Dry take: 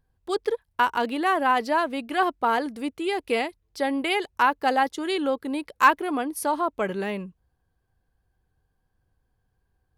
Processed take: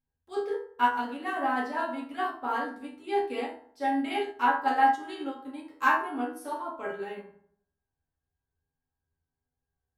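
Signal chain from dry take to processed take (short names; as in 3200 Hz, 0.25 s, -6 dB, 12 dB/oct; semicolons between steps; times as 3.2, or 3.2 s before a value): resonator 81 Hz, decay 0.38 s, harmonics all, mix 90%; reverb RT60 0.70 s, pre-delay 4 ms, DRR -3.5 dB; upward expander 1.5:1, over -38 dBFS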